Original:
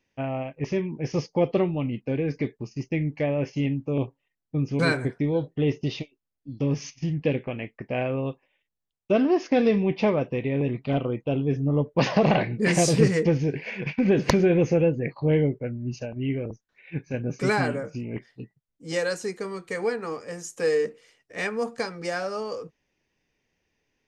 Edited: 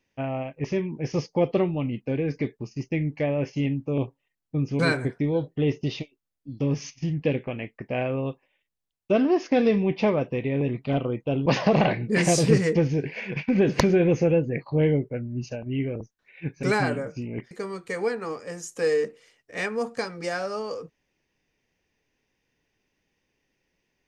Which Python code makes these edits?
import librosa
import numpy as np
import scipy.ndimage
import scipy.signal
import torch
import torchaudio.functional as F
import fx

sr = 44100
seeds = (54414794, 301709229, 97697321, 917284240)

y = fx.edit(x, sr, fx.cut(start_s=11.46, length_s=0.5),
    fx.cut(start_s=17.13, length_s=0.28),
    fx.cut(start_s=18.29, length_s=1.03), tone=tone)